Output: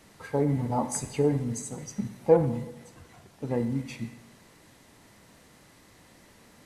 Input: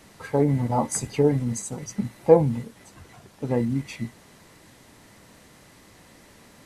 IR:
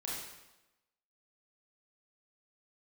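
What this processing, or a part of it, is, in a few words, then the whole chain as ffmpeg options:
saturated reverb return: -filter_complex "[0:a]asplit=2[a][b];[1:a]atrim=start_sample=2205[c];[b][c]afir=irnorm=-1:irlink=0,asoftclip=type=tanh:threshold=-11.5dB,volume=-9dB[d];[a][d]amix=inputs=2:normalize=0,volume=-6dB"

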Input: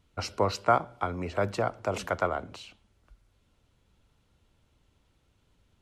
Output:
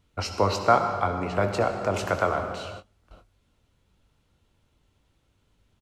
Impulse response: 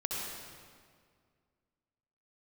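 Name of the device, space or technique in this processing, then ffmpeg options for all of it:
keyed gated reverb: -filter_complex "[0:a]asplit=3[a][b][c];[1:a]atrim=start_sample=2205[d];[b][d]afir=irnorm=-1:irlink=0[e];[c]apad=whole_len=256232[f];[e][f]sidechaingate=range=-33dB:threshold=-58dB:ratio=16:detection=peak,volume=-6dB[g];[a][g]amix=inputs=2:normalize=0,asplit=2[h][i];[i]adelay=21,volume=-10.5dB[j];[h][j]amix=inputs=2:normalize=0"

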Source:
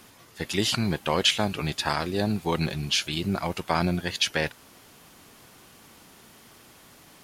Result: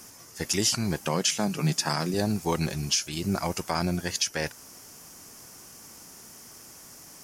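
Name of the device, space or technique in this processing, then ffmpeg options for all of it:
over-bright horn tweeter: -filter_complex "[0:a]asettb=1/sr,asplit=3[a][b][c];[a]atrim=end=1.074[d];[b]atrim=start=1.07:end=2.14,asetpts=PTS-STARTPTS,afade=t=in:d=0.004:c=qsin,afade=t=out:st=1.066:d=0.004:c=qsin,lowshelf=f=110:t=q:w=3:g=-12.5[e];[c]atrim=start=2.136[f];[d][e]acrossfade=d=0.004:c1=hsin:c2=qsin[g];[g][f]acrossfade=d=0.004:c1=qsin:c2=hsin,highshelf=f=4.6k:t=q:w=3:g=6.5,alimiter=limit=-13dB:level=0:latency=1:release=347"

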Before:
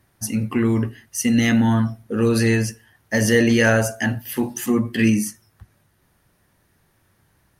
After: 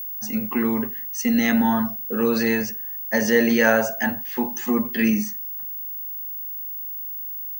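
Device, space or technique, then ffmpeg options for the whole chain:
old television with a line whistle: -af "highpass=f=190:w=0.5412,highpass=f=190:w=1.3066,equalizer=f=320:t=q:w=4:g=-8,equalizer=f=860:t=q:w=4:g=5,equalizer=f=3k:t=q:w=4:g=-6,equalizer=f=5k:t=q:w=4:g=-4,lowpass=f=6.5k:w=0.5412,lowpass=f=6.5k:w=1.3066,aeval=exprs='val(0)+0.0355*sin(2*PI*15625*n/s)':c=same"

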